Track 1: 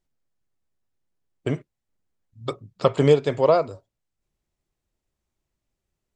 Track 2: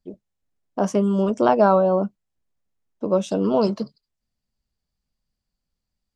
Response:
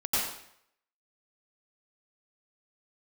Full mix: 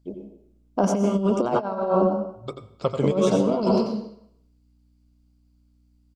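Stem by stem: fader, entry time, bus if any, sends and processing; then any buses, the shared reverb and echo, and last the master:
-10.0 dB, 0.00 s, send -23 dB, echo send -8.5 dB, low shelf 450 Hz +3 dB; hum 60 Hz, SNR 30 dB
-2.5 dB, 0.00 s, send -11.5 dB, echo send -10 dB, dry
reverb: on, RT60 0.70 s, pre-delay 84 ms
echo: echo 87 ms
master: notch 1800 Hz, Q 6.6; negative-ratio compressor -20 dBFS, ratio -0.5

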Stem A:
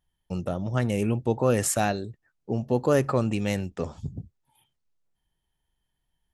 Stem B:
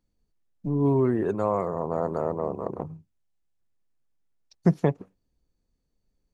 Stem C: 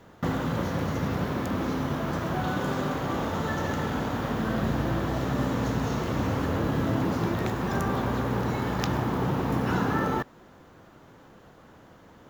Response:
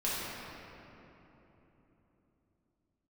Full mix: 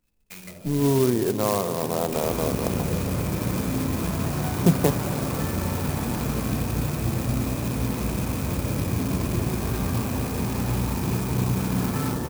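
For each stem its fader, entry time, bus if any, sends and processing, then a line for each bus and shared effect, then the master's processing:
-5.0 dB, 0.00 s, bus A, send -14 dB, notches 60/120/180 Hz; rotary speaker horn 8 Hz; auto duck -19 dB, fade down 0.20 s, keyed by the second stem
+1.0 dB, 0.00 s, no bus, send -20 dB, dry
-2.5 dB, 1.90 s, bus A, send -3 dB, low shelf 120 Hz +9.5 dB; compressor, threshold -27 dBFS, peak gain reduction 8.5 dB
bus A: 0.0 dB, inverted band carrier 2600 Hz; compressor 2.5:1, threshold -41 dBFS, peak gain reduction 9.5 dB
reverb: on, RT60 3.6 s, pre-delay 5 ms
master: clock jitter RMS 0.087 ms

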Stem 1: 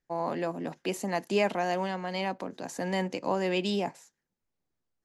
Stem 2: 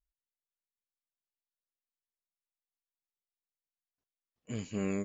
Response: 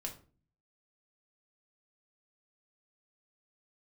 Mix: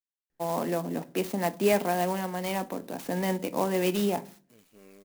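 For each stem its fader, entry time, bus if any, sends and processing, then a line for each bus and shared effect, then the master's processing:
-3.0 dB, 0.30 s, send -4.5 dB, dry
-18.0 dB, 0.00 s, no send, expander -47 dBFS; tone controls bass -13 dB, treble +8 dB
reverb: on, RT60 0.40 s, pre-delay 4 ms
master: bell 300 Hz +3 dB 2.5 oct; clock jitter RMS 0.043 ms

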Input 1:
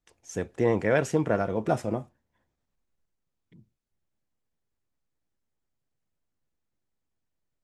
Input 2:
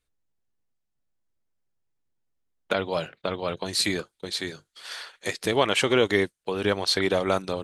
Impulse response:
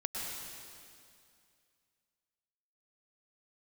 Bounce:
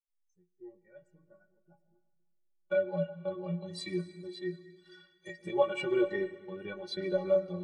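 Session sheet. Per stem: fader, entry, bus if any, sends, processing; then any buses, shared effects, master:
-10.5 dB, 0.00 s, send -10.5 dB, per-bin expansion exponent 1.5; auto duck -14 dB, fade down 1.40 s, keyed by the second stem
+1.5 dB, 0.00 s, send -7.5 dB, tilt -1.5 dB/oct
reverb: on, RT60 2.4 s, pre-delay 98 ms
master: metallic resonator 170 Hz, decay 0.28 s, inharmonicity 0.03; de-hum 153.9 Hz, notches 27; spectral expander 1.5:1

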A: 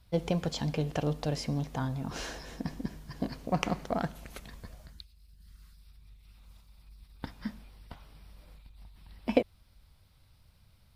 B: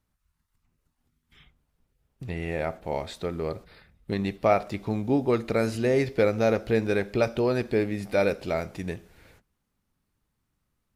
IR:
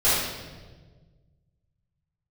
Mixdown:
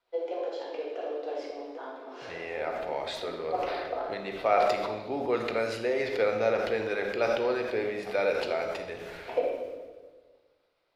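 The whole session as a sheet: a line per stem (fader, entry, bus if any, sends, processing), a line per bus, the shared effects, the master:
-5.5 dB, 0.00 s, send -10 dB, steep high-pass 310 Hz 48 dB/oct; tilt -3 dB/oct; rotary speaker horn 7.5 Hz
-4.0 dB, 0.00 s, send -21 dB, sustainer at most 31 dB/s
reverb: on, RT60 1.4 s, pre-delay 4 ms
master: three-band isolator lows -19 dB, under 370 Hz, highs -13 dB, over 4900 Hz

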